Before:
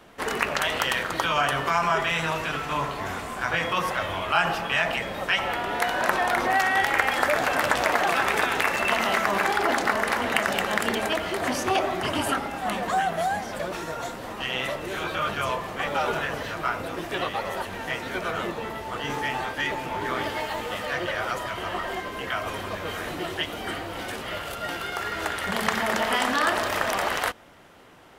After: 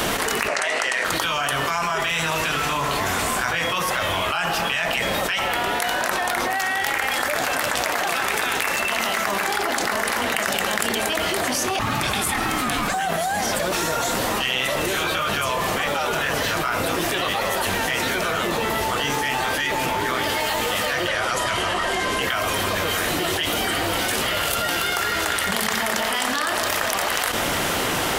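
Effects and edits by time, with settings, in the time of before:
0:00.48–0:01.05: loudspeaker in its box 270–9,400 Hz, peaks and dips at 410 Hz +3 dB, 660 Hz +6 dB, 2,000 Hz +6 dB, 3,300 Hz −8 dB
0:11.79–0:12.94: ring modulation 500 Hz
0:21.08–0:22.22: low-pass filter 11,000 Hz 24 dB per octave
whole clip: high-shelf EQ 3,500 Hz +11.5 dB; envelope flattener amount 100%; level −6.5 dB

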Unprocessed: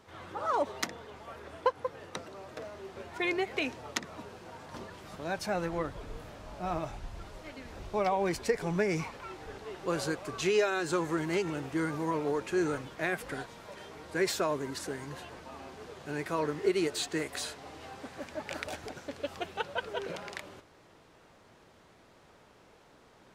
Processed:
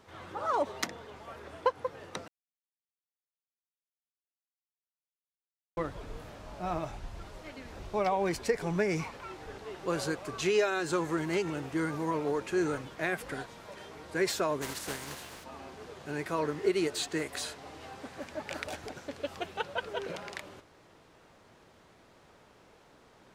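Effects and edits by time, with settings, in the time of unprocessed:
0:02.28–0:05.77: silence
0:14.61–0:15.43: compressing power law on the bin magnitudes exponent 0.49

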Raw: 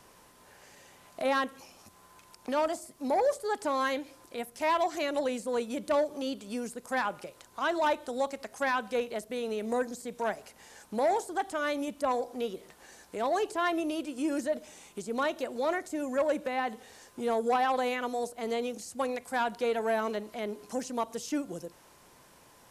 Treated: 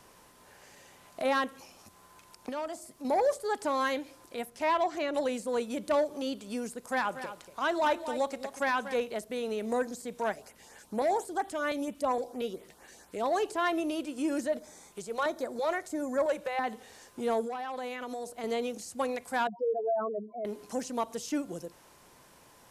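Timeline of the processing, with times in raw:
0:02.49–0:03.05: downward compressor 1.5 to 1, threshold −45 dBFS
0:04.47–0:05.13: low-pass filter 6,600 Hz → 2,500 Hz 6 dB per octave
0:06.78–0:08.94: single-tap delay 238 ms −11.5 dB
0:10.32–0:13.26: auto-filter notch saw up 4.3 Hz 630–6,800 Hz
0:14.59–0:16.64: auto-filter notch square 1.5 Hz 260–2,800 Hz
0:17.41–0:18.44: downward compressor 10 to 1, threshold −33 dBFS
0:19.47–0:20.45: expanding power law on the bin magnitudes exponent 3.9

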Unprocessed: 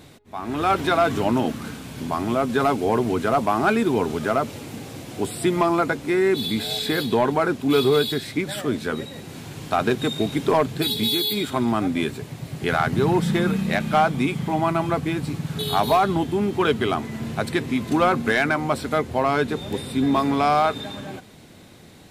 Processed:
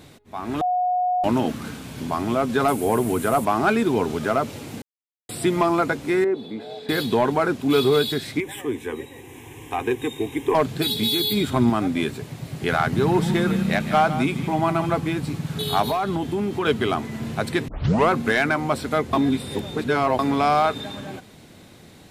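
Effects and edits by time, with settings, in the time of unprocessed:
0:00.61–0:01.24: beep over 726 Hz −18.5 dBFS
0:02.68–0:03.45: high shelf with overshoot 7,300 Hz +11 dB, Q 1.5
0:04.82–0:05.29: silence
0:06.24–0:06.89: resonant band-pass 530 Hz, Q 1.2
0:08.40–0:10.55: phaser with its sweep stopped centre 920 Hz, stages 8
0:11.20–0:11.70: low-shelf EQ 180 Hz +11.5 dB
0:12.86–0:15.07: single-tap delay 157 ms −12 dB
0:15.82–0:16.66: downward compressor 4 to 1, threshold −20 dBFS
0:17.68: tape start 0.41 s
0:19.13–0:20.19: reverse

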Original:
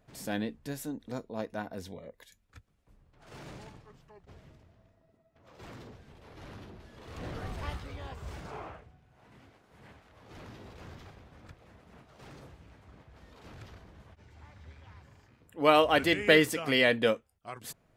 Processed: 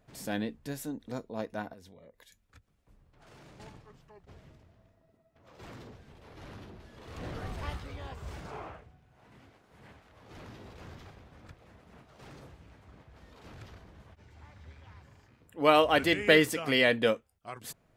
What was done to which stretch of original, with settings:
0:01.73–0:03.60: downward compressor 3 to 1, threshold −53 dBFS

